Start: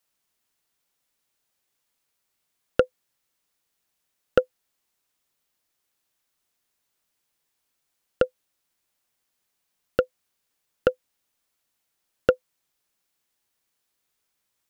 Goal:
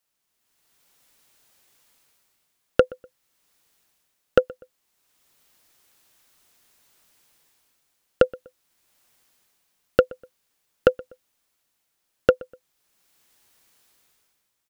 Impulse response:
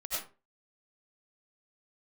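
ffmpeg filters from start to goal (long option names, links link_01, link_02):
-filter_complex "[0:a]dynaudnorm=framelen=150:gausssize=9:maxgain=16dB,asplit=2[link_01][link_02];[link_02]adelay=123,lowpass=frequency=2000:poles=1,volume=-22.5dB,asplit=2[link_03][link_04];[link_04]adelay=123,lowpass=frequency=2000:poles=1,volume=0.33[link_05];[link_03][link_05]amix=inputs=2:normalize=0[link_06];[link_01][link_06]amix=inputs=2:normalize=0,volume=-1dB"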